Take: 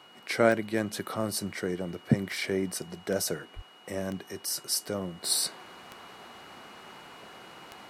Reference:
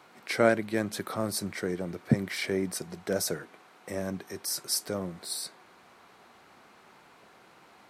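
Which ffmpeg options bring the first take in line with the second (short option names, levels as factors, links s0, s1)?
-filter_complex "[0:a]adeclick=t=4,bandreject=f=2900:w=30,asplit=3[s0][s1][s2];[s0]afade=t=out:st=3.55:d=0.02[s3];[s1]highpass=f=140:w=0.5412,highpass=f=140:w=1.3066,afade=t=in:st=3.55:d=0.02,afade=t=out:st=3.67:d=0.02[s4];[s2]afade=t=in:st=3.67:d=0.02[s5];[s3][s4][s5]amix=inputs=3:normalize=0,asetnsamples=n=441:p=0,asendcmd='5.24 volume volume -8dB',volume=1"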